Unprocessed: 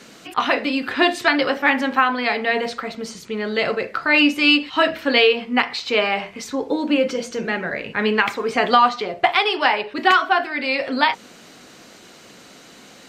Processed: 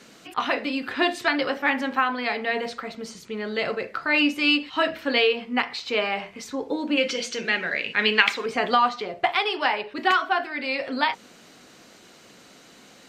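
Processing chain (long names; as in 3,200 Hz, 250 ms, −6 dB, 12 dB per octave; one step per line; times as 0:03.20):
0:06.97–0:08.46: meter weighting curve D
level −5.5 dB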